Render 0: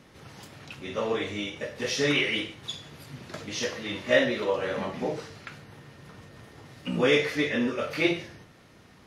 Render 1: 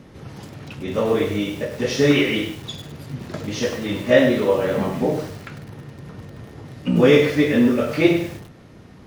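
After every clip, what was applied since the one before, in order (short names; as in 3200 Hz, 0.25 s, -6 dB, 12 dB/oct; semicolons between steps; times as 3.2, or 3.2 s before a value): tilt shelf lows +5.5 dB, about 680 Hz; lo-fi delay 0.1 s, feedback 35%, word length 7-bit, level -8.5 dB; gain +7 dB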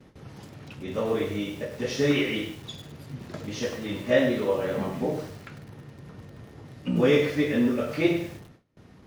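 gate with hold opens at -35 dBFS; gain -7 dB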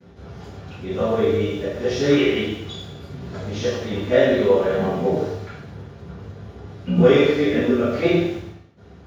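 reverb RT60 0.70 s, pre-delay 3 ms, DRR -12 dB; gain -12.5 dB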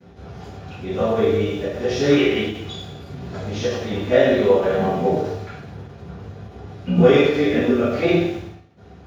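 small resonant body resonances 740/2500 Hz, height 7 dB; ending taper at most 110 dB/s; gain +1 dB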